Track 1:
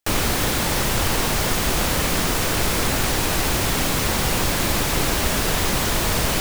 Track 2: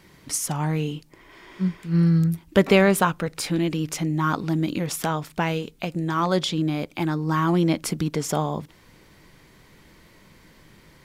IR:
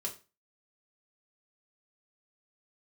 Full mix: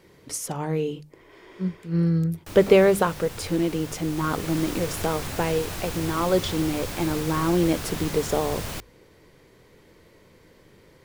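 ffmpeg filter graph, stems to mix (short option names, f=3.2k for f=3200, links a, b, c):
-filter_complex "[0:a]adelay=2400,volume=-12.5dB,afade=t=in:st=4.03:d=0.6:silence=0.473151[a];[1:a]equalizer=f=460:t=o:w=0.88:g=11,bandreject=f=50:t=h:w=6,bandreject=f=100:t=h:w=6,bandreject=f=150:t=h:w=6,bandreject=f=200:t=h:w=6,volume=-5dB[b];[a][b]amix=inputs=2:normalize=0,equalizer=f=96:w=2.8:g=8.5,bandreject=f=50:t=h:w=6,bandreject=f=100:t=h:w=6"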